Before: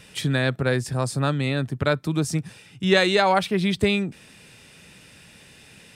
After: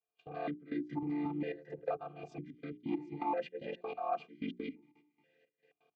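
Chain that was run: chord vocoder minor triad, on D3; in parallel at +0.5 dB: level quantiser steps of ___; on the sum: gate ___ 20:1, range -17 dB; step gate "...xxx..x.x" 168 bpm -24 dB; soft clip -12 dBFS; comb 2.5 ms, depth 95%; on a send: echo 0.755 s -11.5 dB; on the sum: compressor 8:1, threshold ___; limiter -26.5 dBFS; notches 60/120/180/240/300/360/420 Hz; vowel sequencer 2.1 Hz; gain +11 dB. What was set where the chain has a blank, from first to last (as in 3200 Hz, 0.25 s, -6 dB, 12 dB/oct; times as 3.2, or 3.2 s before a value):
21 dB, -41 dBFS, -31 dBFS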